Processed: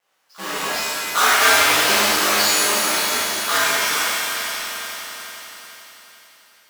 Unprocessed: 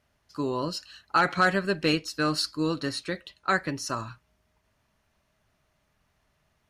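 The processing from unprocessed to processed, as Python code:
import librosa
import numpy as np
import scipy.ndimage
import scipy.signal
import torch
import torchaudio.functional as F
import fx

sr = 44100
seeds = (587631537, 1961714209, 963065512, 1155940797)

y = fx.halfwave_hold(x, sr)
y = scipy.signal.sosfilt(scipy.signal.butter(2, 760.0, 'highpass', fs=sr, output='sos'), y)
y = y * np.sin(2.0 * np.pi * 100.0 * np.arange(len(y)) / sr)
y = fx.echo_swell(y, sr, ms=88, loudest=5, wet_db=-15.5)
y = fx.rev_shimmer(y, sr, seeds[0], rt60_s=1.6, semitones=7, shimmer_db=-2, drr_db=-10.5)
y = y * librosa.db_to_amplitude(-2.5)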